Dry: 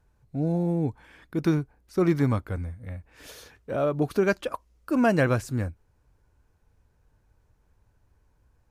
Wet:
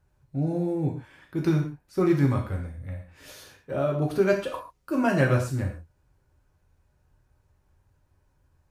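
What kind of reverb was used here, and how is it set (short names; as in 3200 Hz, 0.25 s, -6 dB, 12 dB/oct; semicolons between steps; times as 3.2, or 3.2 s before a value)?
non-linear reverb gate 0.17 s falling, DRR -0.5 dB; gain -3.5 dB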